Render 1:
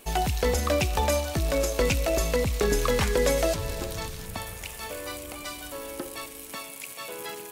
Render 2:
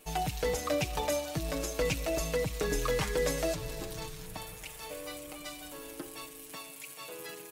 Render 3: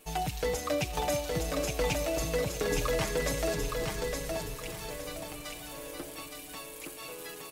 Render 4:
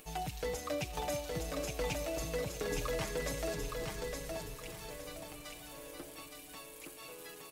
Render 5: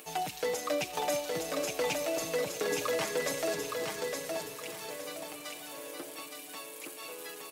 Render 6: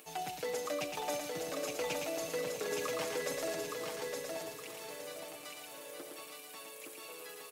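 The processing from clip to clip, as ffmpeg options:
-af "aecho=1:1:6.5:0.74,volume=-8dB"
-af "aecho=1:1:866|1732|2598|3464:0.631|0.202|0.0646|0.0207"
-af "acompressor=mode=upward:threshold=-44dB:ratio=2.5,volume=-6.5dB"
-af "highpass=270,volume=6dB"
-af "aecho=1:1:114:0.596,volume=-6dB"

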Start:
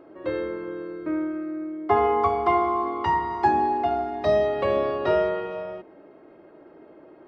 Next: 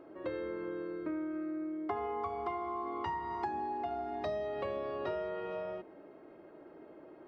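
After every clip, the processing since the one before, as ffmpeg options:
-af "acompressor=threshold=-30dB:ratio=6,volume=-4.5dB"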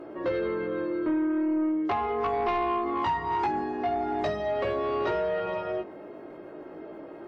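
-filter_complex "[0:a]flanger=delay=17:depth=2.8:speed=0.4,asplit=2[a][b];[b]aeval=exprs='0.0562*sin(PI/2*3.16*val(0)/0.0562)':c=same,volume=-11dB[c];[a][c]amix=inputs=2:normalize=0,volume=6.5dB" -ar 44100 -c:a wmav2 -b:a 128k

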